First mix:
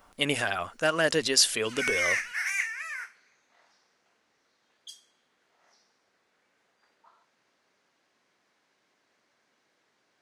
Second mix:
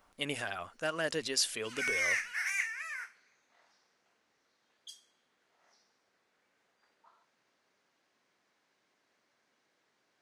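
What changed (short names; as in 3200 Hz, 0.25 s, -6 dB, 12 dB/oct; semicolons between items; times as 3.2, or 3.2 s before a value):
speech -9.0 dB; background -4.0 dB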